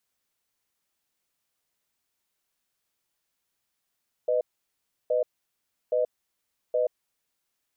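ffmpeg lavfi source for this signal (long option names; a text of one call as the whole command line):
ffmpeg -f lavfi -i "aevalsrc='0.0631*(sin(2*PI*499*t)+sin(2*PI*616*t))*clip(min(mod(t,0.82),0.13-mod(t,0.82))/0.005,0,1)':duration=3.26:sample_rate=44100" out.wav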